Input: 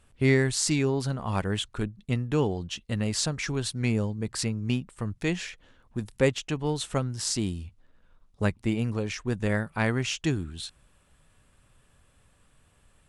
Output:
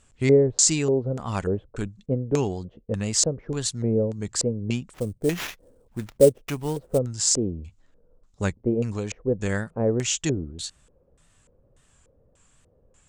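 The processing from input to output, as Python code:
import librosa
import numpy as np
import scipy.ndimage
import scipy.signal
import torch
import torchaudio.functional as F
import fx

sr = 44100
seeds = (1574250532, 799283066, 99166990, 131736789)

y = fx.wow_flutter(x, sr, seeds[0], rate_hz=2.1, depth_cents=97.0)
y = fx.filter_lfo_lowpass(y, sr, shape='square', hz=1.7, low_hz=500.0, high_hz=7200.0, q=4.3)
y = fx.sample_hold(y, sr, seeds[1], rate_hz=8800.0, jitter_pct=20, at=(4.93, 6.97), fade=0.02)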